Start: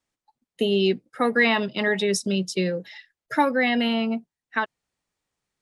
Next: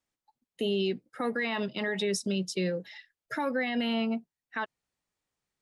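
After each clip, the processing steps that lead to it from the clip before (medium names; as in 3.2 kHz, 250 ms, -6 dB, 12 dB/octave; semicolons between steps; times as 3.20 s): peak limiter -16.5 dBFS, peak gain reduction 9 dB; trim -4.5 dB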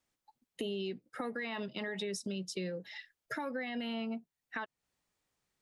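compression 3:1, threshold -42 dBFS, peak gain reduction 12.5 dB; trim +3 dB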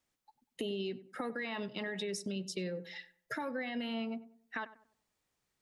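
filtered feedback delay 96 ms, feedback 36%, low-pass 1.4 kHz, level -15 dB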